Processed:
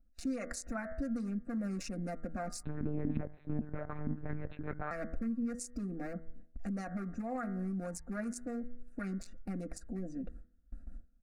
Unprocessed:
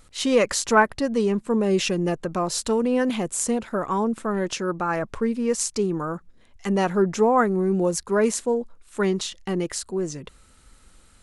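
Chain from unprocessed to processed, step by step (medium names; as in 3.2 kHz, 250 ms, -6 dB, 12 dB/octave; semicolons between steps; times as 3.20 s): local Wiener filter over 41 samples; gate with hold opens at -43 dBFS; bass shelf 140 Hz +9 dB; comb 4.3 ms, depth 74%; de-hum 81.15 Hz, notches 27; harmonic-percussive split percussive +8 dB; compression 2:1, threshold -34 dBFS, peak gain reduction 14 dB; peak limiter -25 dBFS, peak gain reduction 13.5 dB; static phaser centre 640 Hz, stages 8; 2.63–4.91 s: monotone LPC vocoder at 8 kHz 150 Hz; trim -2.5 dB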